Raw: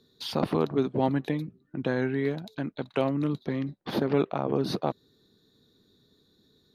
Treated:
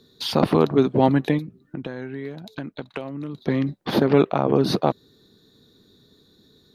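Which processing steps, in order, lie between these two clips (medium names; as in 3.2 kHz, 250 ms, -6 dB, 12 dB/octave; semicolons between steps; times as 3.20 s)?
1.38–3.38 s: compression 8:1, threshold -37 dBFS, peak gain reduction 16.5 dB; trim +8 dB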